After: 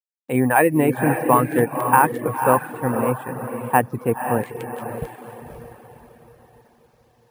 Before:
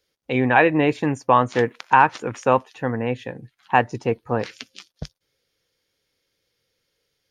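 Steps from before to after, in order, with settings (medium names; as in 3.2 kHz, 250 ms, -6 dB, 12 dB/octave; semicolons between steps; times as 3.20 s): low-pass 2 kHz 12 dB/octave; echo that smears into a reverb 541 ms, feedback 42%, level -5.5 dB; dynamic bell 190 Hz, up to +4 dB, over -30 dBFS, Q 0.98; careless resampling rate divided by 4×, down none, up hold; bit crusher 11-bit; reverb removal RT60 0.51 s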